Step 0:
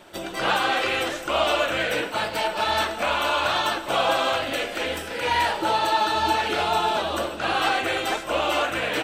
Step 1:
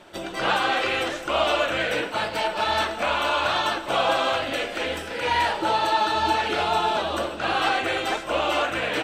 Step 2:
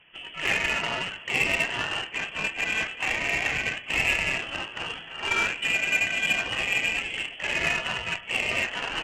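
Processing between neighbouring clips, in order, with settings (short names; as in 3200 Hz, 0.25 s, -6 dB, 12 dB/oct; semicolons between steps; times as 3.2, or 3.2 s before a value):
high shelf 11000 Hz -11.5 dB
inverted band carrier 3300 Hz; added harmonics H 7 -22 dB, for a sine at -8.5 dBFS; gain -1.5 dB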